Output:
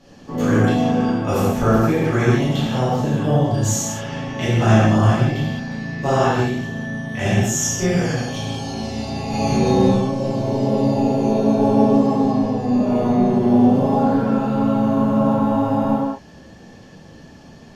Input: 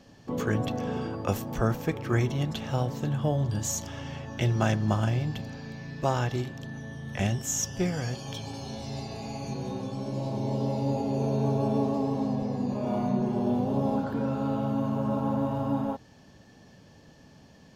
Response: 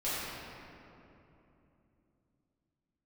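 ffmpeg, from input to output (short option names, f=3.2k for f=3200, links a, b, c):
-filter_complex "[0:a]asettb=1/sr,asplit=3[a][b][c];[a]atrim=end=9.304[d];[b]atrim=start=9.3:end=9.93,asetpts=PTS-STARTPTS,afade=t=in:d=0.004:c=qsin,afade=t=out:st=0.626:d=0.004:c=qsin,acontrast=63[e];[c]atrim=start=9.926[f];[d][e]acrossfade=d=0.004:c1=hsin:c2=qsin[g];[g][f]acrossfade=d=0.004:c1=qsin:c2=hsin[h];[1:a]atrim=start_sample=2205,atrim=end_sample=6174,asetrate=26901,aresample=44100[i];[h][i]afir=irnorm=-1:irlink=0,volume=2dB"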